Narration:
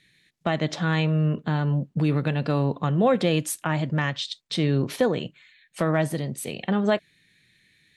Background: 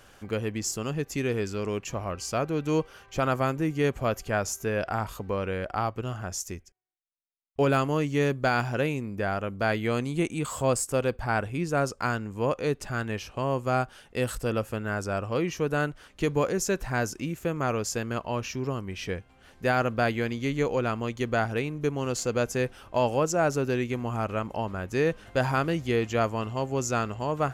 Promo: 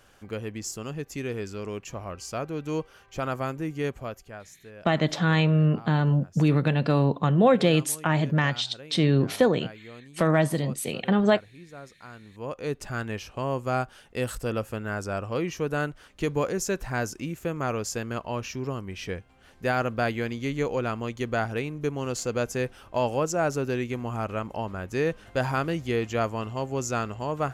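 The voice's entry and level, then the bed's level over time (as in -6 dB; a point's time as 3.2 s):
4.40 s, +1.5 dB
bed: 3.88 s -4 dB
4.49 s -18 dB
12.06 s -18 dB
12.78 s -1 dB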